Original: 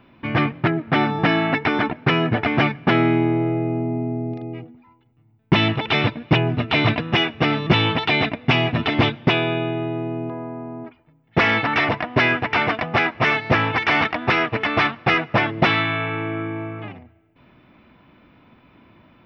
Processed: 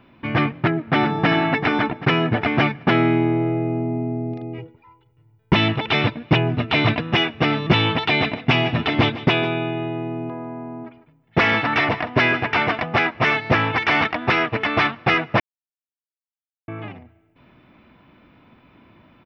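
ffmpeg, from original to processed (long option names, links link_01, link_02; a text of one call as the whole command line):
ffmpeg -i in.wav -filter_complex "[0:a]asplit=2[link_01][link_02];[link_02]afade=type=in:start_time=0.55:duration=0.01,afade=type=out:start_time=1.27:duration=0.01,aecho=0:1:390|780|1170|1560|1950:0.334965|0.150734|0.0678305|0.0305237|0.0137357[link_03];[link_01][link_03]amix=inputs=2:normalize=0,asettb=1/sr,asplit=3[link_04][link_05][link_06];[link_04]atrim=end=4.584[link_07];[link_05]atrim=start=4.58:end=5.53,asetpts=PTS-STARTPTS,afade=type=in:duration=0.004:curve=qsin,afade=type=out:start_time=0.946:duration=0.004:curve=qsin,aecho=1:1:2.1:0.82,atrim=end_sample=41895[link_08];[link_06]atrim=start=5.526[link_09];[link_07][link_08]acrossfade=duration=0.004:curve1=hsin:curve2=qsin[link_10];[link_10][link_09]acrossfade=duration=0.004:curve1=qsin:curve2=hsin,asettb=1/sr,asplit=3[link_11][link_12][link_13];[link_11]atrim=end=7.994[link_14];[link_12]atrim=start=7.99:end=12.82,asetpts=PTS-STARTPTS,afade=type=in:duration=0.004:curve=qsin,afade=type=out:start_time=4.826:duration=0.004:curve=qsin,aecho=1:1:151:0.178,atrim=end_sample=213003[link_15];[link_13]atrim=start=12.816[link_16];[link_14][link_15]acrossfade=duration=0.004:curve1=hsin:curve2=qsin[link_17];[link_17][link_16]acrossfade=duration=0.004:curve1=qsin:curve2=hsin,asplit=3[link_18][link_19][link_20];[link_18]atrim=end=15.4,asetpts=PTS-STARTPTS,afade=type=out:start_time=15.396:duration=0.004:curve=hsin[link_21];[link_19]atrim=start=15.4:end=16.68,asetpts=PTS-STARTPTS,volume=0[link_22];[link_20]atrim=start=16.68,asetpts=PTS-STARTPTS,afade=type=in:duration=0.004:curve=hsin[link_23];[link_21][link_22][link_23]concat=n=3:v=0:a=1" out.wav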